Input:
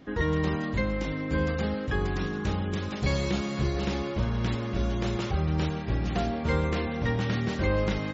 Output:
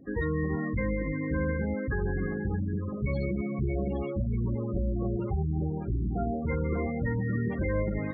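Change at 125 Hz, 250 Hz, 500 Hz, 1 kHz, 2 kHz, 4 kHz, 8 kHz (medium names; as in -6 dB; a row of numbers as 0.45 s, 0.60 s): -1.5 dB, -1.0 dB, -2.0 dB, -6.0 dB, -4.0 dB, under -25 dB, no reading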